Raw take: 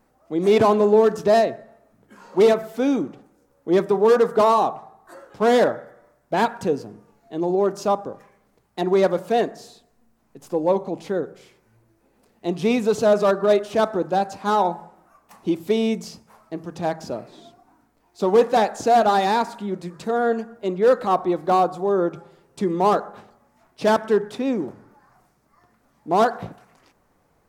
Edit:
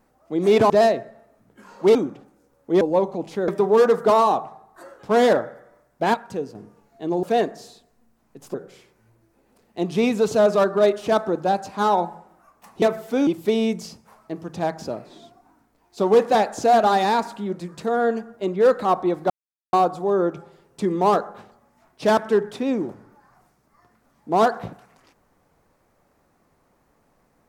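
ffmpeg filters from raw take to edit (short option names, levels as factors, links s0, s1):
-filter_complex "[0:a]asplit=12[s0][s1][s2][s3][s4][s5][s6][s7][s8][s9][s10][s11];[s0]atrim=end=0.702[s12];[s1]atrim=start=1.228:end=2.482[s13];[s2]atrim=start=2.928:end=3.792[s14];[s3]atrim=start=10.538:end=11.212[s15];[s4]atrim=start=3.788:end=6.452[s16];[s5]atrim=start=6.448:end=6.862,asetpts=PTS-STARTPTS,volume=0.501[s17];[s6]atrim=start=6.858:end=7.542[s18];[s7]atrim=start=9.228:end=10.542[s19];[s8]atrim=start=11.208:end=15.492[s20];[s9]atrim=start=2.478:end=2.932[s21];[s10]atrim=start=15.488:end=21.52,asetpts=PTS-STARTPTS,afade=t=out:st=6.028:d=0.004:c=hsin,apad=pad_dur=0.43[s22];[s11]atrim=start=21.52,asetpts=PTS-STARTPTS,afade=t=in:d=0.004:c=hsin[s23];[s12][s13]acrossfade=d=0.004:c1=hsin:c2=hsin[s24];[s24][s14]acrossfade=d=0.004:c1=hsin:c2=hsin[s25];[s25][s15]acrossfade=d=0.004:c1=hsin:c2=hsin[s26];[s26][s16]acrossfade=d=0.004:c1=hsin:c2=hsin[s27];[s27][s17]acrossfade=d=0.004:c1=hsin:c2=hsin[s28];[s28][s18]acrossfade=d=0.004:c1=hsin:c2=hsin[s29];[s29][s19]acrossfade=d=0.004:c1=hsin:c2=hsin[s30];[s30][s20]acrossfade=d=0.004:c1=hsin:c2=hsin[s31];[s31][s21]acrossfade=d=0.004:c1=hsin:c2=hsin[s32];[s22][s23]concat=n=2:v=0:a=1[s33];[s32][s33]acrossfade=d=0.004:c1=hsin:c2=hsin"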